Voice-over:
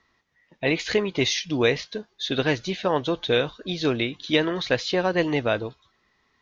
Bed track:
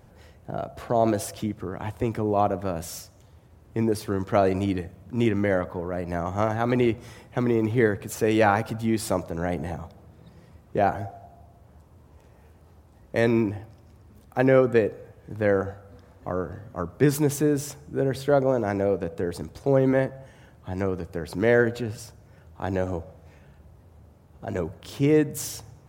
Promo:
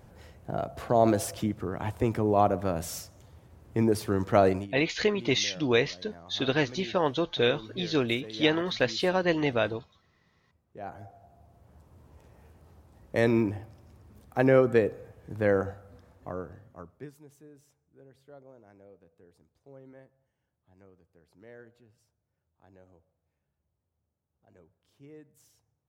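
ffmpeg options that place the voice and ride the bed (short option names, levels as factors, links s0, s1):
-filter_complex "[0:a]adelay=4100,volume=0.708[s0];[1:a]volume=7.94,afade=t=out:st=4.48:d=0.2:silence=0.0944061,afade=t=in:st=10.78:d=1.21:silence=0.11885,afade=t=out:st=15.61:d=1.51:silence=0.0398107[s1];[s0][s1]amix=inputs=2:normalize=0"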